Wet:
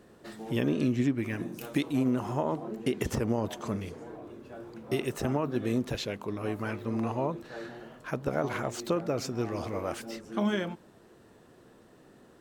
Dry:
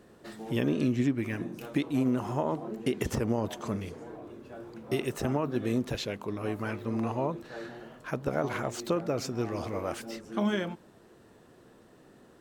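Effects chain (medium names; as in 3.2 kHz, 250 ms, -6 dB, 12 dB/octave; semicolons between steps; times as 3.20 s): 1.38–1.91 s: treble shelf 6.7 kHz -> 3.8 kHz +8.5 dB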